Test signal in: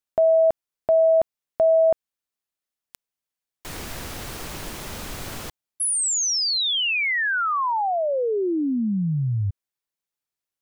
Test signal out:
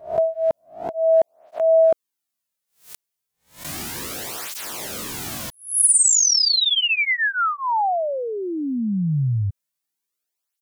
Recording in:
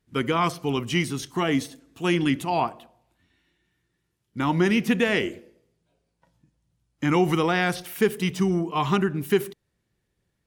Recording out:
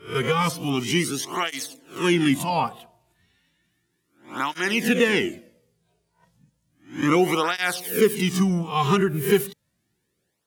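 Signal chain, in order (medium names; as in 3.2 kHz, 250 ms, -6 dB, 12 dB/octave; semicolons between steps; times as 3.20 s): reverse spectral sustain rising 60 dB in 0.35 s; treble shelf 5 kHz +7.5 dB; cancelling through-zero flanger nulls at 0.33 Hz, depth 4 ms; trim +3 dB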